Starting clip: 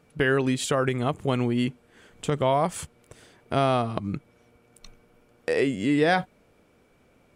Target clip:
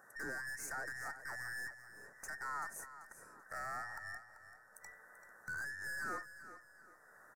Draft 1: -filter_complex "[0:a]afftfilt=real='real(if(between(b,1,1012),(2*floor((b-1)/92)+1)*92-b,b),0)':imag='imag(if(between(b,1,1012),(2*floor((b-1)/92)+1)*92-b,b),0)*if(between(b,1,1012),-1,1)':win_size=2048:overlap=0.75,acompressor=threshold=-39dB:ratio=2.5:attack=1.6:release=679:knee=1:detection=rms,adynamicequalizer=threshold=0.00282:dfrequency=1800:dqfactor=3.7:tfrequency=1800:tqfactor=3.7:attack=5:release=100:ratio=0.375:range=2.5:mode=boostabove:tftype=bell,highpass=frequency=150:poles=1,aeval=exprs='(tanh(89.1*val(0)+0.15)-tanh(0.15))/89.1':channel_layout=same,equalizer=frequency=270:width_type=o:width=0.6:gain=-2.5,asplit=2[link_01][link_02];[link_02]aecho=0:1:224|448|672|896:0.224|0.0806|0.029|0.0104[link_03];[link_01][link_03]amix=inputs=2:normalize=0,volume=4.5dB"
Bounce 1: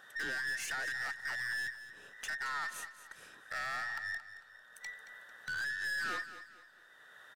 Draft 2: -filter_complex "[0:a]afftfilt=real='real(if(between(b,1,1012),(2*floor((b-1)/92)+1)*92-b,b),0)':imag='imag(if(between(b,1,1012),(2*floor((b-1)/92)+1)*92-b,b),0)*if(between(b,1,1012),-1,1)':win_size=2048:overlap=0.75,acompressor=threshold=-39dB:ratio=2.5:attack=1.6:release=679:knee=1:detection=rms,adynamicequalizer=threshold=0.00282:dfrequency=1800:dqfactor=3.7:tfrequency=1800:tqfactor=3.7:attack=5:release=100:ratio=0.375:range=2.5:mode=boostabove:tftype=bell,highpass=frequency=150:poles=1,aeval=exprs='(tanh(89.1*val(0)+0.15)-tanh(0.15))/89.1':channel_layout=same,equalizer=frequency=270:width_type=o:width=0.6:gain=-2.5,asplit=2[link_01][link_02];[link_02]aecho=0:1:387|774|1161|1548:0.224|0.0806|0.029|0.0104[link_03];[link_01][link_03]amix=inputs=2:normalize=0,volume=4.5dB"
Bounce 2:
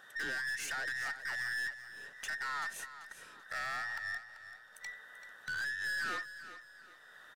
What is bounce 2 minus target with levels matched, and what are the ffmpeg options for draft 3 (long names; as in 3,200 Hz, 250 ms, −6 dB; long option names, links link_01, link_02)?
4,000 Hz band +8.0 dB
-filter_complex "[0:a]afftfilt=real='real(if(between(b,1,1012),(2*floor((b-1)/92)+1)*92-b,b),0)':imag='imag(if(between(b,1,1012),(2*floor((b-1)/92)+1)*92-b,b),0)*if(between(b,1,1012),-1,1)':win_size=2048:overlap=0.75,acompressor=threshold=-39dB:ratio=2.5:attack=1.6:release=679:knee=1:detection=rms,adynamicequalizer=threshold=0.00282:dfrequency=1800:dqfactor=3.7:tfrequency=1800:tqfactor=3.7:attack=5:release=100:ratio=0.375:range=2.5:mode=boostabove:tftype=bell,highpass=frequency=150:poles=1,aeval=exprs='(tanh(89.1*val(0)+0.15)-tanh(0.15))/89.1':channel_layout=same,asuperstop=centerf=3200:order=4:qfactor=0.56,equalizer=frequency=270:width_type=o:width=0.6:gain=-2.5,asplit=2[link_01][link_02];[link_02]aecho=0:1:387|774|1161|1548:0.224|0.0806|0.029|0.0104[link_03];[link_01][link_03]amix=inputs=2:normalize=0,volume=4.5dB"